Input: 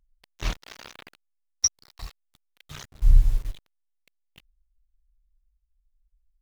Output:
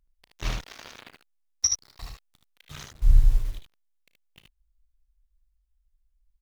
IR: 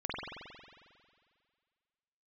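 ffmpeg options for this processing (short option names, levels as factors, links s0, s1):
-af "aecho=1:1:34|58|75:0.188|0.2|0.631,volume=0.841"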